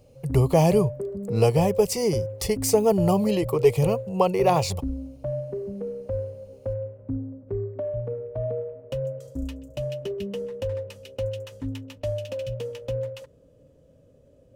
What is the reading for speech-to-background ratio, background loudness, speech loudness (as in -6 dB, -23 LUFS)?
10.0 dB, -32.5 LUFS, -22.5 LUFS